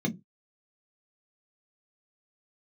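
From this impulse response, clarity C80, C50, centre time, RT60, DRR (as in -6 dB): 26.5 dB, 18.0 dB, 9 ms, not exponential, 1.0 dB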